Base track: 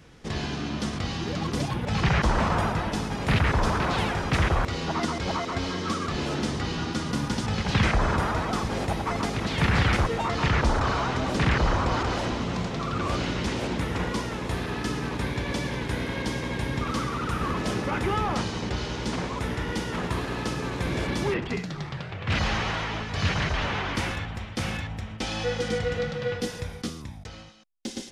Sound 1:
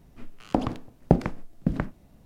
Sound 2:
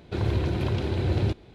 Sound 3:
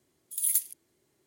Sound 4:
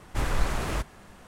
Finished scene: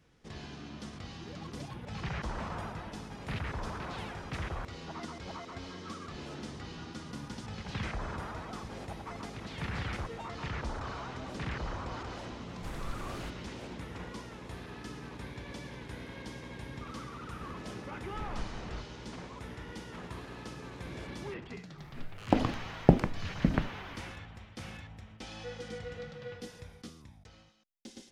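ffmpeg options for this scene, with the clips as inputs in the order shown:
-filter_complex "[4:a]asplit=2[a][b];[0:a]volume=-14.5dB[c];[b]lowpass=3.2k[d];[a]atrim=end=1.27,asetpts=PTS-STARTPTS,volume=-14dB,afade=t=in:d=0.004:c=hsin,afade=t=out:st=1.266:d=0.004:c=hsin,adelay=12480[e];[d]atrim=end=1.27,asetpts=PTS-STARTPTS,volume=-14dB,afade=t=in:d=0.004:c=hsin,afade=t=out:st=1.266:d=0.004:c=hsin,adelay=18000[f];[1:a]atrim=end=2.25,asetpts=PTS-STARTPTS,volume=-1.5dB,afade=t=in:d=0.004:c=hsin,afade=t=out:st=2.246:d=0.004:c=hsin,adelay=21780[g];[c][e][f][g]amix=inputs=4:normalize=0"

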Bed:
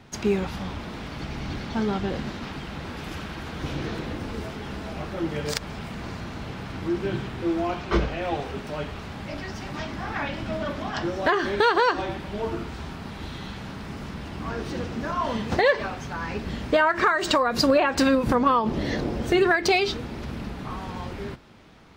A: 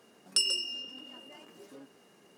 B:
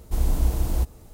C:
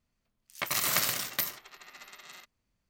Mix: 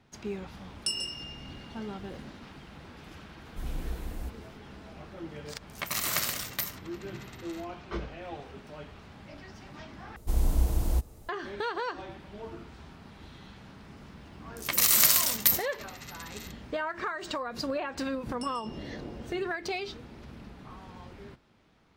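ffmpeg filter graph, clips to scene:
-filter_complex "[1:a]asplit=2[a][b];[2:a]asplit=2[c][d];[3:a]asplit=2[e][f];[0:a]volume=-13dB[g];[c]aecho=1:1:4.1:0.5[h];[f]highshelf=f=3.5k:g=11.5[i];[g]asplit=2[j][k];[j]atrim=end=10.164[l];[d]atrim=end=1.13,asetpts=PTS-STARTPTS,volume=-3.5dB[m];[k]atrim=start=11.286[n];[a]atrim=end=2.37,asetpts=PTS-STARTPTS,volume=-4.5dB,afade=t=in:d=0.004:c=hsin,afade=t=out:st=2.366:d=0.004:c=hsin,adelay=500[o];[h]atrim=end=1.13,asetpts=PTS-STARTPTS,volume=-16dB,afade=t=in:d=0.004:c=hsin,afade=t=out:st=1.126:d=0.004:c=hsin,adelay=152145S[p];[e]atrim=end=2.89,asetpts=PTS-STARTPTS,volume=-2dB,afade=t=in:d=0.004:c=hsin,afade=t=out:st=2.886:d=0.004:c=hsin,adelay=5200[q];[i]atrim=end=2.89,asetpts=PTS-STARTPTS,volume=-2dB,afade=t=in:d=0.004:c=hsin,afade=t=out:st=2.886:d=0.004:c=hsin,adelay=14070[r];[b]atrim=end=2.37,asetpts=PTS-STARTPTS,volume=-18dB,afade=t=in:d=0.004:c=hsin,afade=t=out:st=2.366:d=0.004:c=hsin,adelay=18050[s];[l][m]acrossfade=d=0.004:c1=hsin:c2=hsin[t];[t][n]acrossfade=d=0.004:c1=hsin:c2=hsin[u];[u][o][p][q][r][s]amix=inputs=6:normalize=0"

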